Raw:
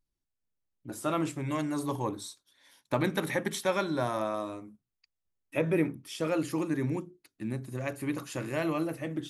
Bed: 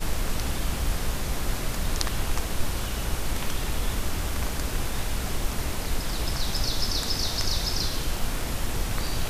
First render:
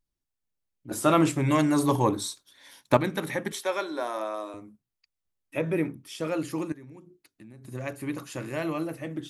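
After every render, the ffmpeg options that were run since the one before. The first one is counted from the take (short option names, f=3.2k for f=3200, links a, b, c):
-filter_complex "[0:a]asettb=1/sr,asplit=3[a][b][c];[a]atrim=end=3.524[d];[b]atrim=start=3.52:end=4.54,asetpts=PTS-STARTPTS,afade=t=in:d=0.004:c=qsin,afade=t=out:st=1.016:d=0.004:c=qsin,highpass=f=310:w=0.5412,highpass=f=310:w=1.3066[e];[c]atrim=start=4.536[f];[d][e]acrossfade=d=0.004:c1=hsin:c2=qsin[g];[g][f]acrossfade=d=0.004:c1=qsin:c2=hsin,asettb=1/sr,asplit=3[h][i][j];[h]atrim=end=6.724[k];[i]atrim=start=6.72:end=7.65,asetpts=PTS-STARTPTS,afade=t=in:d=0.004:c=qsin,afade=t=out:st=0.926:d=0.004:c=qsin,acompressor=threshold=-47dB:ratio=4:attack=3.2:release=140:knee=1:detection=peak[l];[j]atrim=start=7.646[m];[k][l]acrossfade=d=0.004:c1=hsin:c2=qsin[n];[n][m]acrossfade=d=0.004:c1=qsin:c2=hsin,asplit=3[o][p][q];[o]atrim=end=0.912[r];[p]atrim=start=0.908:end=2.972,asetpts=PTS-STARTPTS,volume=9dB[s];[q]atrim=start=2.968[t];[r][s]acrossfade=d=0.004:c1=hsin:c2=hsin[u];[u][t]acrossfade=d=0.004:c1=hsin:c2=hsin"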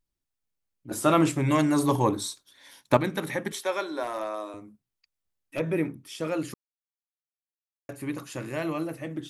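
-filter_complex "[0:a]asettb=1/sr,asplit=3[a][b][c];[a]atrim=end=4.034[d];[b]atrim=start=4.03:end=5.6,asetpts=PTS-STARTPTS,afade=t=in:d=0.004:c=qsin,afade=t=out:st=1.566:d=0.004:c=qsin,volume=24.5dB,asoftclip=hard,volume=-24.5dB[e];[c]atrim=start=5.596[f];[d][e]acrossfade=d=0.004:c1=hsin:c2=qsin[g];[g][f]acrossfade=d=0.004:c1=qsin:c2=hsin,asplit=3[h][i][j];[h]atrim=end=6.54,asetpts=PTS-STARTPTS,afade=t=out:st=6.536:d=0.004:c=hsin[k];[i]atrim=start=6.54:end=7.89,asetpts=PTS-STARTPTS,volume=0[l];[j]atrim=start=7.89,asetpts=PTS-STARTPTS,afade=t=in:d=0.004:c=hsin[m];[k][l][m]concat=n=3:v=0:a=1"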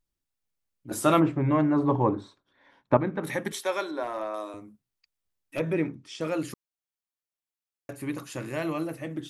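-filter_complex "[0:a]asplit=3[a][b][c];[a]afade=t=out:st=1.19:d=0.02[d];[b]lowpass=1.4k,afade=t=in:st=1.19:d=0.02,afade=t=out:st=3.23:d=0.02[e];[c]afade=t=in:st=3.23:d=0.02[f];[d][e][f]amix=inputs=3:normalize=0,asettb=1/sr,asplit=3[g][h][i];[g]atrim=end=3.914[j];[h]atrim=start=3.91:end=4.34,asetpts=PTS-STARTPTS,afade=t=in:d=0.004:c=qsin,afade=t=out:st=0.426:d=0.004:c=qsin,highshelf=f=4k:g=-11.5[k];[i]atrim=start=4.336[l];[j][k]acrossfade=d=0.004:c1=hsin:c2=qsin[m];[m][l]acrossfade=d=0.004:c1=qsin:c2=hsin,asettb=1/sr,asplit=3[n][o][p];[n]atrim=end=5.734[q];[o]atrim=start=5.73:end=6.21,asetpts=PTS-STARTPTS,afade=t=in:d=0.004:c=qsin,afade=t=out:st=0.476:d=0.004:c=qsin,lowpass=f=7.2k:w=0.5412,lowpass=f=7.2k:w=1.3066[r];[p]atrim=start=6.206[s];[q][r]acrossfade=d=0.004:c1=hsin:c2=qsin[t];[t][s]acrossfade=d=0.004:c1=qsin:c2=hsin"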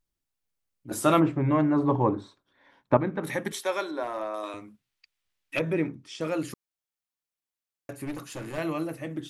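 -filter_complex "[0:a]asettb=1/sr,asplit=3[a][b][c];[a]atrim=end=4.434[d];[b]atrim=start=4.43:end=5.59,asetpts=PTS-STARTPTS,afade=t=in:d=0.004:c=qsin,afade=t=out:st=1.156:d=0.004:c=qsin,equalizer=f=2.6k:w=0.55:g=10.5[e];[c]atrim=start=5.586[f];[d][e]acrossfade=d=0.004:c1=hsin:c2=qsin[g];[g][f]acrossfade=d=0.004:c1=qsin:c2=hsin,asettb=1/sr,asplit=3[h][i][j];[h]atrim=end=8.054[k];[i]atrim=start=8.05:end=8.58,asetpts=PTS-STARTPTS,afade=t=in:d=0.004:c=qsin,afade=t=out:st=0.526:d=0.004:c=qsin,aeval=exprs='clip(val(0),-1,0.0158)':c=same[l];[j]atrim=start=8.576[m];[k][l]acrossfade=d=0.004:c1=hsin:c2=qsin[n];[n][m]acrossfade=d=0.004:c1=qsin:c2=hsin"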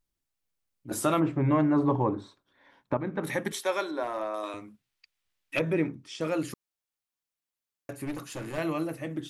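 -af "alimiter=limit=-14.5dB:level=0:latency=1:release=251"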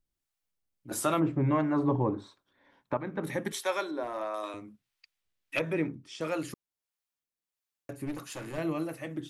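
-filter_complex "[0:a]acrossover=split=550[a][b];[a]aeval=exprs='val(0)*(1-0.5/2+0.5/2*cos(2*PI*1.5*n/s))':c=same[c];[b]aeval=exprs='val(0)*(1-0.5/2-0.5/2*cos(2*PI*1.5*n/s))':c=same[d];[c][d]amix=inputs=2:normalize=0"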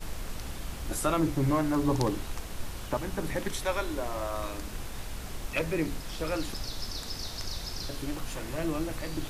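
-filter_complex "[1:a]volume=-10dB[a];[0:a][a]amix=inputs=2:normalize=0"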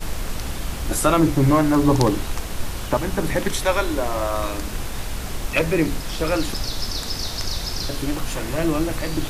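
-af "volume=10dB"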